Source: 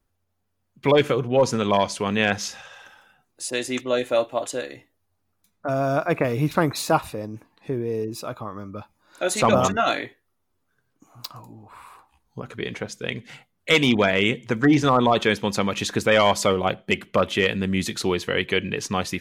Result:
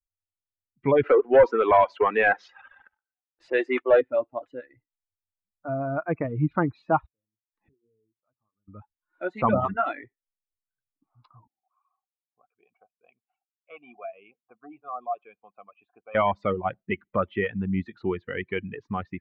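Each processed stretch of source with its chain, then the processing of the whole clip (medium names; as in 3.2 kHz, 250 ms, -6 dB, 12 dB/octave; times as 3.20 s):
1.03–4.01 s: high-pass 360 Hz 24 dB/octave + waveshaping leveller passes 3
7.06–8.68 s: inverted gate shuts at -36 dBFS, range -25 dB + hum notches 60/120/180/240/300/360/420/480 Hz
11.47–16.15 s: vowel filter a + dynamic bell 810 Hz, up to -4 dB, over -42 dBFS
whole clip: expander on every frequency bin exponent 1.5; reverb removal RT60 0.52 s; low-pass 2 kHz 24 dB/octave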